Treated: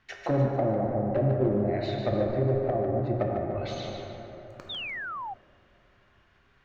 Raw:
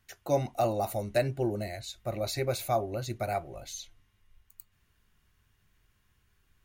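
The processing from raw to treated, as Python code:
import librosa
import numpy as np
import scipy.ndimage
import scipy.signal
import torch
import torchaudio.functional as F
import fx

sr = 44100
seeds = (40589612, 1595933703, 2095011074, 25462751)

p1 = fx.tracing_dist(x, sr, depth_ms=0.034)
p2 = fx.env_lowpass_down(p1, sr, base_hz=310.0, full_db=-28.5)
p3 = fx.low_shelf(p2, sr, hz=180.0, db=-12.0)
p4 = fx.transient(p3, sr, attack_db=2, sustain_db=7)
p5 = 10.0 ** (-31.0 / 20.0) * (np.abs((p4 / 10.0 ** (-31.0 / 20.0) + 3.0) % 4.0 - 2.0) - 1.0)
p6 = p4 + (p5 * librosa.db_to_amplitude(-4.5))
p7 = fx.air_absorb(p6, sr, metres=230.0)
p8 = p7 + fx.echo_thinned(p7, sr, ms=148, feedback_pct=43, hz=420.0, wet_db=-6.5, dry=0)
p9 = fx.rev_plate(p8, sr, seeds[0], rt60_s=3.7, hf_ratio=0.3, predelay_ms=0, drr_db=0.5)
p10 = fx.spec_paint(p9, sr, seeds[1], shape='fall', start_s=4.69, length_s=0.65, low_hz=740.0, high_hz=3800.0, level_db=-41.0)
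y = p10 * librosa.db_to_amplitude(5.5)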